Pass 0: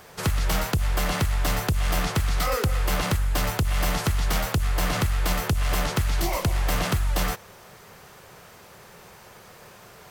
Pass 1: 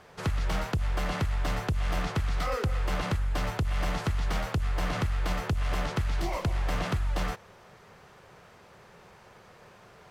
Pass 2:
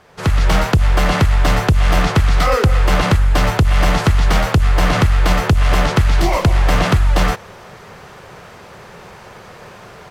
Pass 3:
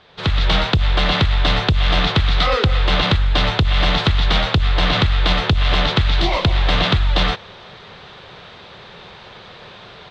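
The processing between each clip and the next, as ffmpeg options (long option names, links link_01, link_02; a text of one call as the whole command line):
ffmpeg -i in.wav -af "aemphasis=mode=reproduction:type=50fm,volume=-5dB" out.wav
ffmpeg -i in.wav -af "dynaudnorm=framelen=160:gausssize=3:maxgain=11.5dB,volume=4dB" out.wav
ffmpeg -i in.wav -af "lowpass=frequency=3700:width_type=q:width=5.3,volume=-3.5dB" out.wav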